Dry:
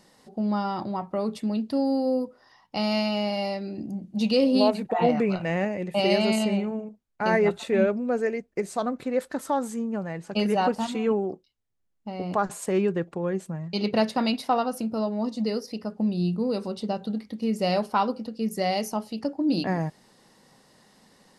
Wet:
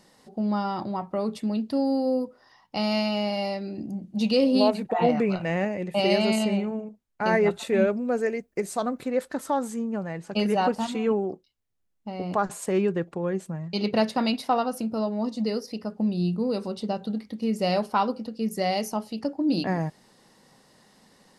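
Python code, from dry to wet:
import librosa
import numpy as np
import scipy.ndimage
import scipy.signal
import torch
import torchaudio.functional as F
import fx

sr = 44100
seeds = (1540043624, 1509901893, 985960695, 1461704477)

y = fx.high_shelf(x, sr, hz=9600.0, db=10.5, at=(7.58, 9.1))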